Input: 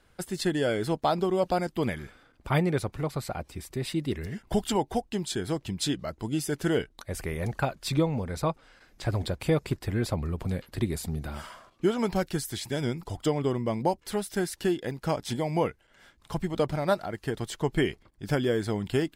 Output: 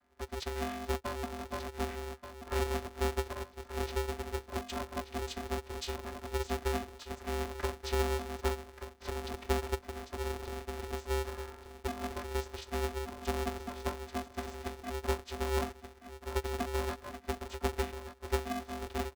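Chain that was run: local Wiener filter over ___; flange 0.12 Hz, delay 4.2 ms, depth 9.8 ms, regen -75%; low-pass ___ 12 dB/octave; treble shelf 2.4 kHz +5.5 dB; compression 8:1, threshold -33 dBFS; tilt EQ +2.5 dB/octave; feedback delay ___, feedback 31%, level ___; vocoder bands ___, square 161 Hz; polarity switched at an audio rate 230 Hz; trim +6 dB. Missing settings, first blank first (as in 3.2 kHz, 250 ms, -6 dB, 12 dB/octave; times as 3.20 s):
15 samples, 5.5 kHz, 1181 ms, -10 dB, 16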